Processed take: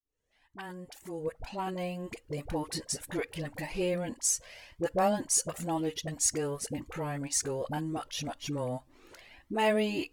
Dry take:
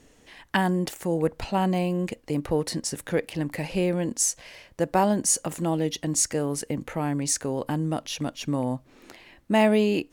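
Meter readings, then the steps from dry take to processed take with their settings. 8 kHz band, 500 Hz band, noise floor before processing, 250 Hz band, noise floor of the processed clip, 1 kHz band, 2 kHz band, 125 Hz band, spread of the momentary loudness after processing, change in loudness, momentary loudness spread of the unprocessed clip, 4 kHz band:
-4.5 dB, -6.5 dB, -58 dBFS, -10.0 dB, -69 dBFS, -6.5 dB, -6.5 dB, -9.5 dB, 13 LU, -6.5 dB, 9 LU, -5.0 dB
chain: fade-in on the opening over 2.60 s; peaking EQ 190 Hz -4.5 dB 1.1 oct; phase dispersion highs, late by 48 ms, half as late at 570 Hz; Shepard-style flanger rising 1.9 Hz

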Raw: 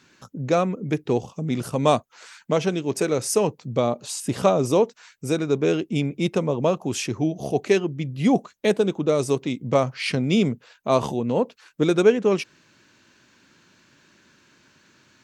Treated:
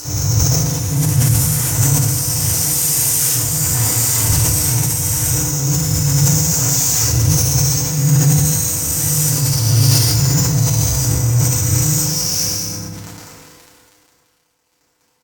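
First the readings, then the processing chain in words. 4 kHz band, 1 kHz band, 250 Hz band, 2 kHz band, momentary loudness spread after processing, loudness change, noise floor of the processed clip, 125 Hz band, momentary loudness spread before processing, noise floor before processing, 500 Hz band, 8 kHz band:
+13.0 dB, -2.0 dB, +1.5 dB, +3.0 dB, 4 LU, +9.0 dB, -62 dBFS, +15.0 dB, 7 LU, -60 dBFS, -10.0 dB, +23.0 dB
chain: reverse spectral sustain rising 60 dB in 2.91 s; inverse Chebyshev band-stop 210–3700 Hz, stop band 40 dB; peaking EQ 4.6 kHz +11.5 dB 1.2 oct; in parallel at -2.5 dB: compression, threshold -41 dBFS, peak gain reduction 21.5 dB; on the sum: phase dispersion lows, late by 52 ms, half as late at 370 Hz; mains buzz 100 Hz, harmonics 14, -54 dBFS -4 dB/octave; fuzz box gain 34 dB, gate -43 dBFS; on a send: delay 198 ms -10 dB; on the sum: FDN reverb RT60 0.9 s, low-frequency decay 1.3×, high-frequency decay 0.6×, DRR -8.5 dB; careless resampling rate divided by 2×, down filtered, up hold; decay stretcher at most 23 dB/s; trim -8.5 dB

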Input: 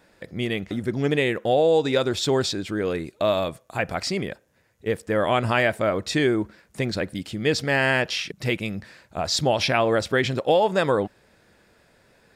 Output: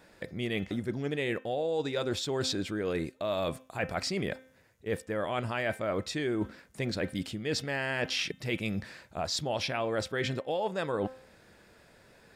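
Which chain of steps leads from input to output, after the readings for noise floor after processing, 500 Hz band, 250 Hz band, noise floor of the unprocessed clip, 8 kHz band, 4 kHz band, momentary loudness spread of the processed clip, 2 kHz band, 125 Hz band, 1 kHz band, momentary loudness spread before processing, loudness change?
-60 dBFS, -10.0 dB, -8.0 dB, -61 dBFS, -7.0 dB, -7.5 dB, 6 LU, -9.5 dB, -8.0 dB, -10.5 dB, 10 LU, -9.5 dB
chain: de-hum 260.1 Hz, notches 14; reverse; compression 10:1, threshold -28 dBFS, peak gain reduction 14 dB; reverse

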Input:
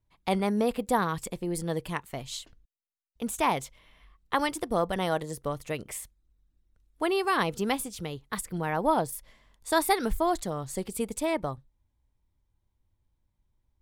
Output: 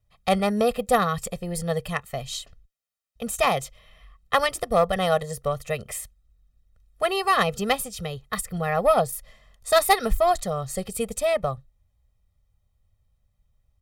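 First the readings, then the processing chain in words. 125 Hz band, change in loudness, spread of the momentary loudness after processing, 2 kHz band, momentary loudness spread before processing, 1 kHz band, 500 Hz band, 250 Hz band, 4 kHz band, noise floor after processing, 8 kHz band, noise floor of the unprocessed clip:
+4.5 dB, +5.0 dB, 13 LU, +5.0 dB, 12 LU, +5.0 dB, +6.5 dB, 0.0 dB, +6.5 dB, -72 dBFS, +5.0 dB, -77 dBFS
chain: Chebyshev shaper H 3 -16 dB, 6 -43 dB, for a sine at -9.5 dBFS; comb 1.6 ms, depth 96%; hard clipper -15.5 dBFS, distortion -23 dB; trim +7.5 dB

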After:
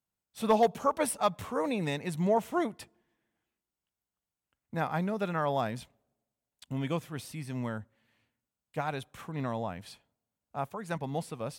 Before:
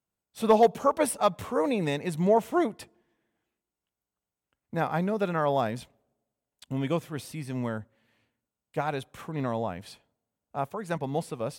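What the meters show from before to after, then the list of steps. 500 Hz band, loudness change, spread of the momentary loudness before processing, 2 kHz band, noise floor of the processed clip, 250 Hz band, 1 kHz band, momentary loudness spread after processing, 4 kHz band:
-5.0 dB, -4.0 dB, 14 LU, -2.5 dB, under -85 dBFS, -3.5 dB, -3.5 dB, 13 LU, -2.0 dB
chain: peaking EQ 430 Hz -4 dB 1.4 oct; trim -2 dB

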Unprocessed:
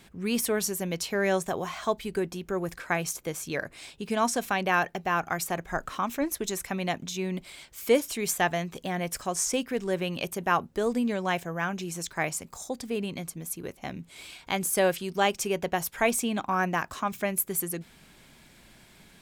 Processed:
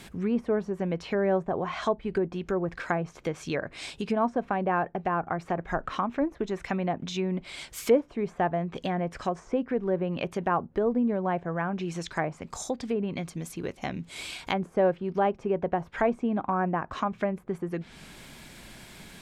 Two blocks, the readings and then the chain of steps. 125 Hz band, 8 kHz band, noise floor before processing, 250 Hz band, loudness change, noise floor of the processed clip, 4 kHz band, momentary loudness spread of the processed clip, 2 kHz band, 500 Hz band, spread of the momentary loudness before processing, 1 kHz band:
+2.5 dB, -14.0 dB, -56 dBFS, +2.0 dB, -0.5 dB, -54 dBFS, -5.5 dB, 10 LU, -5.0 dB, +1.5 dB, 10 LU, 0.0 dB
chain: low-pass that closes with the level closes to 1 kHz, closed at -25.5 dBFS; in parallel at +3 dB: compression, threshold -42 dBFS, peak gain reduction 22.5 dB

